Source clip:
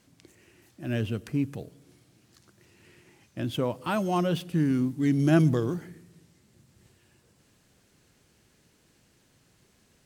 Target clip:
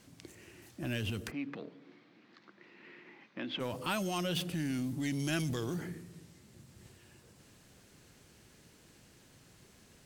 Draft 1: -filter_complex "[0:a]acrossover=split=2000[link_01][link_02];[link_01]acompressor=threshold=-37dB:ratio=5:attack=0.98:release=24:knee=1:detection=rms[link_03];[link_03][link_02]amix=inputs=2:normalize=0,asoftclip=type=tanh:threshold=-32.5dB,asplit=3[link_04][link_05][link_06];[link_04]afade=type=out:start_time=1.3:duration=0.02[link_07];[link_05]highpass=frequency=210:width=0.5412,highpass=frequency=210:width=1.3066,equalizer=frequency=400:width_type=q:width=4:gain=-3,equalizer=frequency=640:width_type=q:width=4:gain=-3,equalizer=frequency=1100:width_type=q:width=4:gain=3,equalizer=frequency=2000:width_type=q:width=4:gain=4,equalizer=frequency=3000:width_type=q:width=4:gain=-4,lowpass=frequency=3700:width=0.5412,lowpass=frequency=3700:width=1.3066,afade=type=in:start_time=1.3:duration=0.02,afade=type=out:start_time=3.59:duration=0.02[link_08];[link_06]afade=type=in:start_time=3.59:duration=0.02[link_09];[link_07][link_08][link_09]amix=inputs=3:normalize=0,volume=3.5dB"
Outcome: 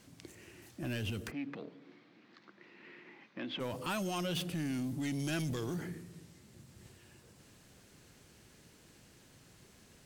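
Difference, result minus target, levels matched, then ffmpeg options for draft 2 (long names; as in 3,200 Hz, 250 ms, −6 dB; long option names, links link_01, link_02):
soft clipping: distortion +14 dB
-filter_complex "[0:a]acrossover=split=2000[link_01][link_02];[link_01]acompressor=threshold=-37dB:ratio=5:attack=0.98:release=24:knee=1:detection=rms[link_03];[link_03][link_02]amix=inputs=2:normalize=0,asoftclip=type=tanh:threshold=-23dB,asplit=3[link_04][link_05][link_06];[link_04]afade=type=out:start_time=1.3:duration=0.02[link_07];[link_05]highpass=frequency=210:width=0.5412,highpass=frequency=210:width=1.3066,equalizer=frequency=400:width_type=q:width=4:gain=-3,equalizer=frequency=640:width_type=q:width=4:gain=-3,equalizer=frequency=1100:width_type=q:width=4:gain=3,equalizer=frequency=2000:width_type=q:width=4:gain=4,equalizer=frequency=3000:width_type=q:width=4:gain=-4,lowpass=frequency=3700:width=0.5412,lowpass=frequency=3700:width=1.3066,afade=type=in:start_time=1.3:duration=0.02,afade=type=out:start_time=3.59:duration=0.02[link_08];[link_06]afade=type=in:start_time=3.59:duration=0.02[link_09];[link_07][link_08][link_09]amix=inputs=3:normalize=0,volume=3.5dB"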